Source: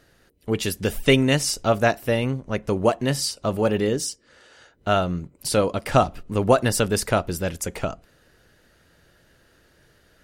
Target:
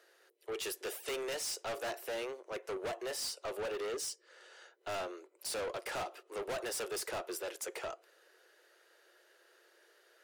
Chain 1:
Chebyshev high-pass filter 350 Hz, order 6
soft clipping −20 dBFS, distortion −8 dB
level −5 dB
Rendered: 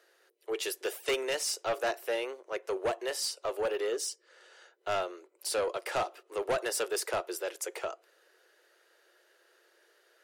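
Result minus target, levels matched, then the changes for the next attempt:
soft clipping: distortion −6 dB
change: soft clipping −30.5 dBFS, distortion −3 dB

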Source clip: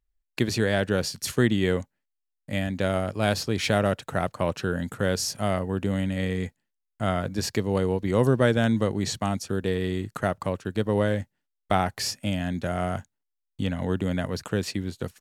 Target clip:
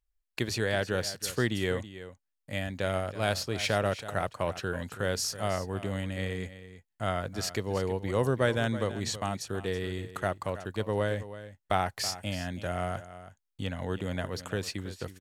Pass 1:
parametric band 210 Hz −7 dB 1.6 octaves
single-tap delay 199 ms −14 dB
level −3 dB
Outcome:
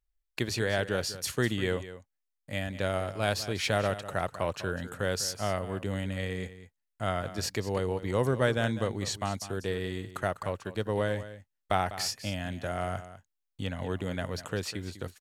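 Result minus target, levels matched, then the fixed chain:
echo 127 ms early
parametric band 210 Hz −7 dB 1.6 octaves
single-tap delay 326 ms −14 dB
level −3 dB

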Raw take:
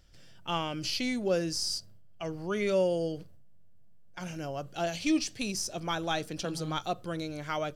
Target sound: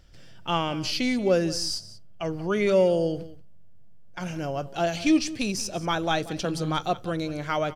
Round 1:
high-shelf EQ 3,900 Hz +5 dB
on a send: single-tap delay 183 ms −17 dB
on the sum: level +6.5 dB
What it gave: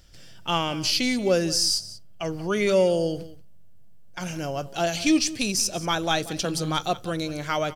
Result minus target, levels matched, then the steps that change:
8,000 Hz band +6.0 dB
change: high-shelf EQ 3,900 Hz −5.5 dB

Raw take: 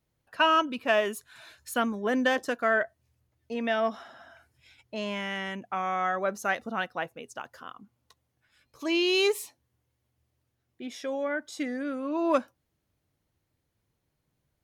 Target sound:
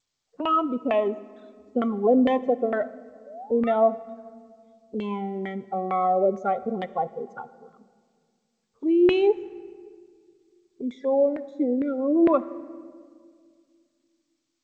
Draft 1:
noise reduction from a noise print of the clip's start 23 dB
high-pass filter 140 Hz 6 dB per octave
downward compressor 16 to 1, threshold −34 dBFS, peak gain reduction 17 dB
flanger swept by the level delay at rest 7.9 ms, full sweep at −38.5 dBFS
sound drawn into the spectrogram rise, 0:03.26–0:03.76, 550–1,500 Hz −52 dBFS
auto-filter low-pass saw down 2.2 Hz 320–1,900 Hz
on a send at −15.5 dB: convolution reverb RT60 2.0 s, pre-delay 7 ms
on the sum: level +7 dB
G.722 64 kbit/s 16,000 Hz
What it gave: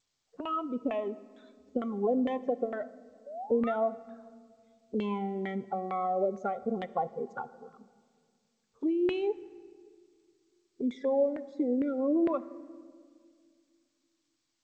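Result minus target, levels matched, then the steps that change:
downward compressor: peak gain reduction +11 dB
change: downward compressor 16 to 1, threshold −22.5 dBFS, peak gain reduction 6 dB

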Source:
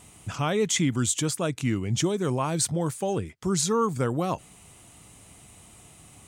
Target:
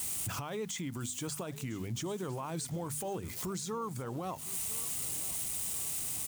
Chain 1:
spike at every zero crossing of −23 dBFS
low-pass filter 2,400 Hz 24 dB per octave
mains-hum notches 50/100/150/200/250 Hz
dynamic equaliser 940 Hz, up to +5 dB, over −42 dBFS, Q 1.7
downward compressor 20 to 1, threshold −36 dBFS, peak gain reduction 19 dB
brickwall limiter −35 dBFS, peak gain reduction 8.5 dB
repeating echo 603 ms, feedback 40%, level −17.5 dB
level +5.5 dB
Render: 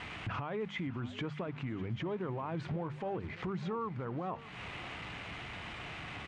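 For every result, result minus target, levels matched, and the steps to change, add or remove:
2,000 Hz band +9.0 dB; echo 402 ms early; spike at every zero crossing: distortion +9 dB
remove: low-pass filter 2,400 Hz 24 dB per octave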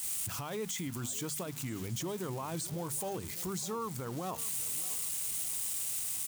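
echo 402 ms early; spike at every zero crossing: distortion +9 dB
change: repeating echo 1,005 ms, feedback 40%, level −17.5 dB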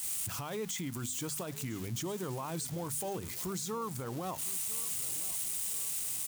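spike at every zero crossing: distortion +9 dB
change: spike at every zero crossing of −32.5 dBFS

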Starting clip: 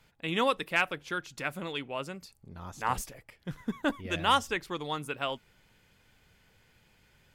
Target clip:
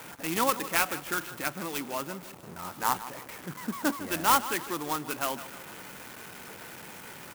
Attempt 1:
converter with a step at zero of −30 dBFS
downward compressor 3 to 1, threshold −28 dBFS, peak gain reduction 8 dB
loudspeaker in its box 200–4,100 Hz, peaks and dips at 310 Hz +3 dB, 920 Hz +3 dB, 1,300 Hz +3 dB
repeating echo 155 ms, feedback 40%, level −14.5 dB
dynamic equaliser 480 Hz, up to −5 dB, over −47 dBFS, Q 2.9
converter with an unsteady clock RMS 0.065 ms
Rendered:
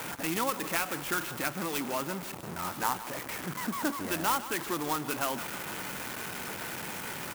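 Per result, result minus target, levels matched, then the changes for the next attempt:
downward compressor: peak gain reduction +8 dB; converter with a step at zero: distortion +6 dB
remove: downward compressor 3 to 1, threshold −28 dBFS, peak gain reduction 8 dB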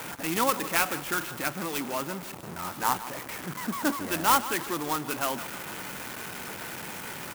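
converter with a step at zero: distortion +6 dB
change: converter with a step at zero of −37 dBFS

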